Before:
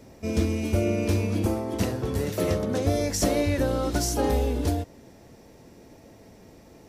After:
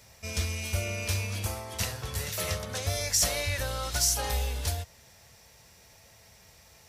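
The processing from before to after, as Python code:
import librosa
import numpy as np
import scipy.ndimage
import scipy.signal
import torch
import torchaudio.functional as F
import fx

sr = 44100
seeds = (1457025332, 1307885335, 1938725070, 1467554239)

p1 = scipy.signal.sosfilt(scipy.signal.butter(2, 57.0, 'highpass', fs=sr, output='sos'), x)
p2 = fx.tone_stack(p1, sr, knobs='10-0-10')
p3 = 10.0 ** (-26.5 / 20.0) * np.tanh(p2 / 10.0 ** (-26.5 / 20.0))
p4 = p2 + F.gain(torch.from_numpy(p3), -10.0).numpy()
y = F.gain(torch.from_numpy(p4), 4.0).numpy()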